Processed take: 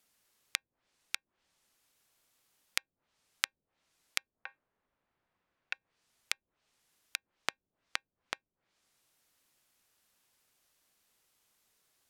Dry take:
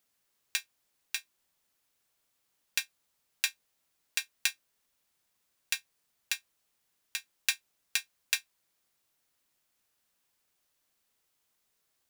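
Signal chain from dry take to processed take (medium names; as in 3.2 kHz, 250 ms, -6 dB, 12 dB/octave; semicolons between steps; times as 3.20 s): 4.35–5.73 s: low-pass 1.1 kHz -> 2.1 kHz 12 dB/octave; low-pass that closes with the level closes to 350 Hz, closed at -37 dBFS; trim +4 dB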